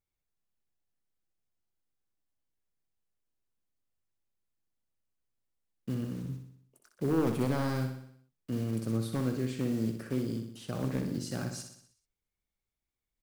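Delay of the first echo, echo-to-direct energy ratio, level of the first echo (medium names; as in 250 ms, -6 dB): 62 ms, -5.5 dB, -7.0 dB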